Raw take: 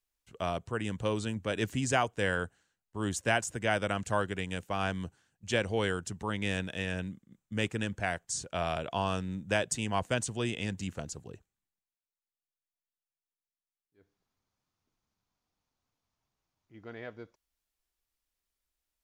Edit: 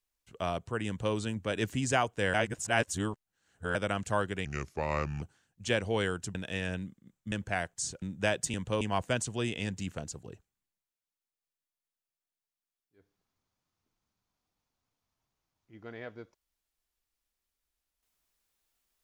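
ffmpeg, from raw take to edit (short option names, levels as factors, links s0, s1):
-filter_complex "[0:a]asplit=10[s0][s1][s2][s3][s4][s5][s6][s7][s8][s9];[s0]atrim=end=2.342[s10];[s1]atrim=start=2.338:end=3.752,asetpts=PTS-STARTPTS,areverse[s11];[s2]atrim=start=3.748:end=4.454[s12];[s3]atrim=start=4.45:end=5.05,asetpts=PTS-STARTPTS,asetrate=34398,aresample=44100,atrim=end_sample=33923,asetpts=PTS-STARTPTS[s13];[s4]atrim=start=5.046:end=6.182[s14];[s5]atrim=start=6.598:end=7.572[s15];[s6]atrim=start=7.828:end=8.532[s16];[s7]atrim=start=9.298:end=9.822[s17];[s8]atrim=start=0.868:end=1.142[s18];[s9]atrim=start=9.818[s19];[s10][s11]acrossfade=d=0.004:c1=hsin:c2=hsin[s20];[s20][s12]acrossfade=d=0.004:c1=hsin:c2=hsin[s21];[s21][s13]acrossfade=d=0.004:c1=hsin:c2=hsin[s22];[s22][s14]acrossfade=d=0.004:c1=hsin:c2=hsin[s23];[s23][s15]acrossfade=d=0.004:c1=hsin:c2=hsin[s24];[s24][s16]acrossfade=d=0.004:c1=hsin:c2=hsin[s25];[s25][s17]acrossfade=d=0.004:c1=hsin:c2=hsin[s26];[s26][s18]acrossfade=d=0.004:c1=hsin:c2=hsin[s27];[s27][s19]acrossfade=d=0.004:c1=hsin:c2=hsin"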